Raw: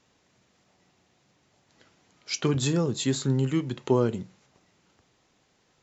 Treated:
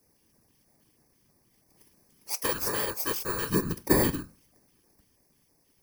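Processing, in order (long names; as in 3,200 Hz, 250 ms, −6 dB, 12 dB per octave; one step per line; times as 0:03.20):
samples in bit-reversed order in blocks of 32 samples
auto-filter notch square 3.1 Hz 630–3,100 Hz
random phases in short frames
0:02.34–0:03.50: low shelf with overshoot 360 Hz −14 dB, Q 1.5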